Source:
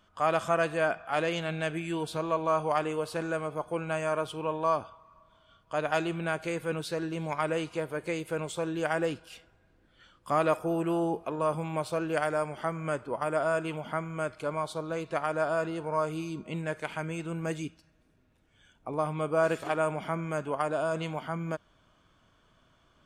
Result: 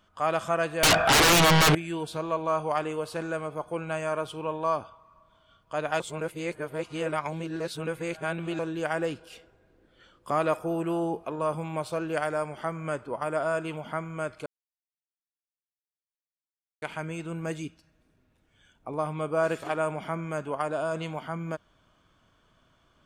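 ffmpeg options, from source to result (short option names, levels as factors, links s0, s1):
-filter_complex "[0:a]asettb=1/sr,asplit=3[s0][s1][s2];[s0]atrim=end=0.834[s3];[s1]atrim=start=0.83:end=1.75,asetpts=PTS-STARTPTS,afade=t=in:d=0.004:c=qsin,afade=t=out:st=0.916:d=0.004:c=qsin,aeval=exprs='0.168*sin(PI/2*10*val(0)/0.168)':c=same[s4];[s2]atrim=start=1.746[s5];[s3][s4]acrossfade=d=0.004:c1=hsin:c2=qsin[s6];[s6][s5]acrossfade=d=0.004:c1=qsin:c2=hsin,asettb=1/sr,asplit=3[s7][s8][s9];[s7]atrim=end=9.194[s10];[s8]atrim=start=9.19:end=10.31,asetpts=PTS-STARTPTS,afade=t=in:d=0.004:c=qsin,afade=t=out:st=1.116:d=0.004:c=qsin,equalizer=f=430:t=o:w=1.1:g=8.5[s11];[s9]atrim=start=10.306[s12];[s10][s11]acrossfade=d=0.004:c1=hsin:c2=qsin[s13];[s13][s12]acrossfade=d=0.004:c1=qsin:c2=hsin,asplit=5[s14][s15][s16][s17][s18];[s14]atrim=end=6.002[s19];[s15]atrim=start=5.998:end=8.592,asetpts=PTS-STARTPTS,areverse[s20];[s16]atrim=start=8.588:end=14.46,asetpts=PTS-STARTPTS,afade=t=out:st=5.868:d=0.004:c=hsin[s21];[s17]atrim=start=14.46:end=16.82,asetpts=PTS-STARTPTS,volume=0[s22];[s18]atrim=start=16.82,asetpts=PTS-STARTPTS,afade=t=in:d=0.004:c=hsin[s23];[s19][s20]acrossfade=d=0.004:c1=hsin:c2=hsin[s24];[s21][s22][s23]concat=n=3:v=0:a=1[s25];[s24][s25]acrossfade=d=0.004:c1=hsin:c2=hsin"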